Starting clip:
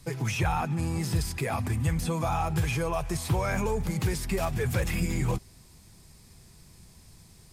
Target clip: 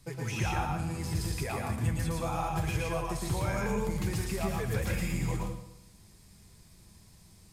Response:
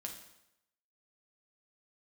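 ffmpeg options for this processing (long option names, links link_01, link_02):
-filter_complex "[0:a]asplit=2[link_01][link_02];[1:a]atrim=start_sample=2205,adelay=114[link_03];[link_02][link_03]afir=irnorm=-1:irlink=0,volume=3dB[link_04];[link_01][link_04]amix=inputs=2:normalize=0,volume=-6.5dB"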